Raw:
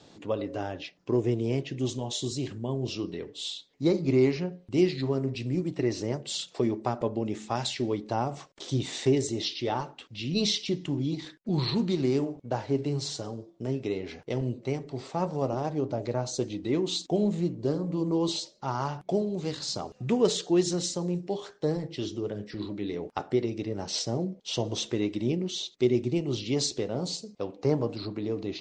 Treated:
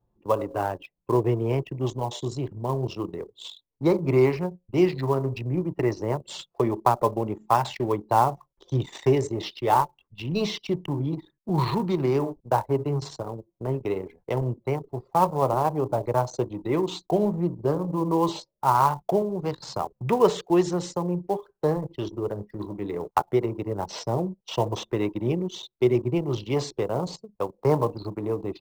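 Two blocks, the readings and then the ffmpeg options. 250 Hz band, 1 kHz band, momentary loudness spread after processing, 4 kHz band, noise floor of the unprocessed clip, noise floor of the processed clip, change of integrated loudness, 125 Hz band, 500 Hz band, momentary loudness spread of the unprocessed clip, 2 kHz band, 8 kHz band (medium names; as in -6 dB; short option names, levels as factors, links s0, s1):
+1.0 dB, +11.5 dB, 10 LU, -5.0 dB, -59 dBFS, -78 dBFS, +3.5 dB, +3.5 dB, +4.5 dB, 9 LU, +3.5 dB, -6.0 dB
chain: -filter_complex "[0:a]anlmdn=6.31,acrossover=split=3300[s0][s1];[s1]acompressor=threshold=0.00708:ratio=4:attack=1:release=60[s2];[s0][s2]amix=inputs=2:normalize=0,equalizer=f=250:t=o:w=0.67:g=-8,equalizer=f=1000:t=o:w=0.67:g=11,equalizer=f=4000:t=o:w=0.67:g=-6,acrossover=split=190|710|3200[s3][s4][s5][s6];[s5]acrusher=bits=4:mode=log:mix=0:aa=0.000001[s7];[s3][s4][s7][s6]amix=inputs=4:normalize=0,volume=1.78"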